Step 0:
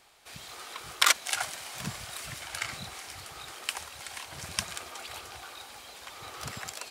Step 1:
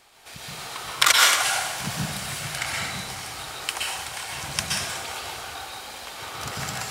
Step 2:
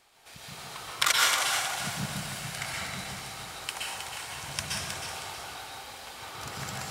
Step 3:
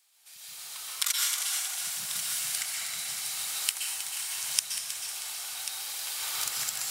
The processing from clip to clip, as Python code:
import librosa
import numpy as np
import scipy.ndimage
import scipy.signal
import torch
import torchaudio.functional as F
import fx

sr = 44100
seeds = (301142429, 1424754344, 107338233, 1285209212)

y1 = fx.rev_plate(x, sr, seeds[0], rt60_s=1.0, hf_ratio=0.8, predelay_ms=110, drr_db=-3.0)
y1 = F.gain(torch.from_numpy(y1), 4.0).numpy()
y2 = fx.echo_alternate(y1, sr, ms=158, hz=1200.0, feedback_pct=61, wet_db=-3.0)
y2 = F.gain(torch.from_numpy(y2), -7.0).numpy()
y3 = fx.recorder_agc(y2, sr, target_db=-13.5, rise_db_per_s=8.5, max_gain_db=30)
y3 = scipy.signal.lfilter([1.0, -0.97], [1.0], y3)
y3 = y3 + 10.0 ** (-11.0 / 20.0) * np.pad(y3, (int(1089 * sr / 1000.0), 0))[:len(y3)]